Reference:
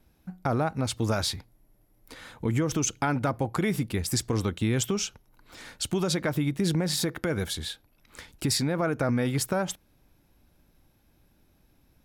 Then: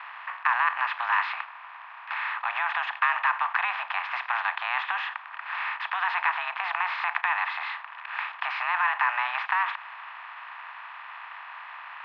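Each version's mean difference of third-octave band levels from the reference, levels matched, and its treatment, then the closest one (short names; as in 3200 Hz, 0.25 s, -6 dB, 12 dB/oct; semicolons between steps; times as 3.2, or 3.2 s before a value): 22.5 dB: per-bin compression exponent 0.4; in parallel at -11 dB: bit-crush 5-bit; on the sum: mistuned SSB +370 Hz 590–2500 Hz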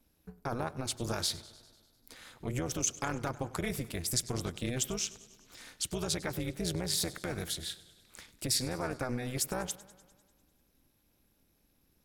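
5.5 dB: AM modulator 250 Hz, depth 80%; high shelf 3200 Hz +9 dB; warbling echo 99 ms, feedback 65%, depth 82 cents, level -19 dB; gain -5.5 dB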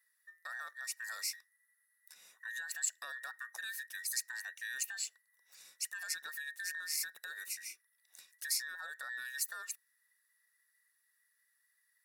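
17.0 dB: band inversion scrambler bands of 2000 Hz; differentiator; notch 3200 Hz, Q 5.4; gain -5.5 dB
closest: second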